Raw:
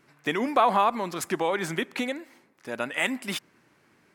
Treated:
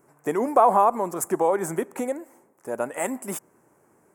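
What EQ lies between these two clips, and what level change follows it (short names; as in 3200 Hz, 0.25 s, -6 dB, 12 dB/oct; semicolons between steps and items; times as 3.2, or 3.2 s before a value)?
EQ curve 270 Hz 0 dB, 410 Hz +6 dB, 900 Hz +5 dB, 4000 Hz -21 dB, 7500 Hz +7 dB; 0.0 dB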